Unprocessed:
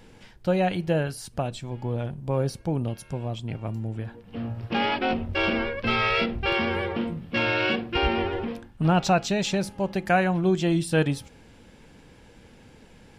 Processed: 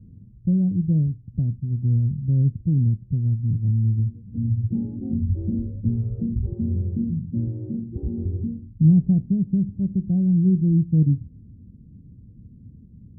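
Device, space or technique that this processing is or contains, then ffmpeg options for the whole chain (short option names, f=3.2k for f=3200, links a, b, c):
the neighbour's flat through the wall: -filter_complex "[0:a]highpass=45,lowpass=f=220:w=0.5412,lowpass=f=220:w=1.3066,equalizer=f=100:t=o:w=0.62:g=5.5,asettb=1/sr,asplit=3[a][b][c];[a]atrim=end=7.484[d];[b]atrim=start=7.48:end=8.25,asetpts=PTS-STARTPTS,afade=t=in:d=0.004:c=qsin,afade=t=out:st=0.766:d=0.004:c=qsin,lowshelf=f=100:g=-11[e];[c]atrim=start=8.246[f];[d][e]acrossfade=d=0.004:c1=hsin:c2=qsin[g];[g][f]acrossfade=d=0.004:c1=qsin:c2=hsin,volume=8dB"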